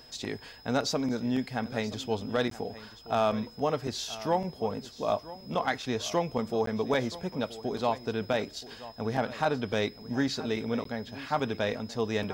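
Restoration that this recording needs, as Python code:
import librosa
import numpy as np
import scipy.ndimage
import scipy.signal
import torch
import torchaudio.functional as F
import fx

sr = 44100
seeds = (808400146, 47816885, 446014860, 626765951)

y = fx.fix_declip(x, sr, threshold_db=-16.0)
y = fx.notch(y, sr, hz=5100.0, q=30.0)
y = fx.fix_interpolate(y, sr, at_s=(2.5, 6.66, 10.84), length_ms=13.0)
y = fx.fix_echo_inverse(y, sr, delay_ms=977, level_db=-16.5)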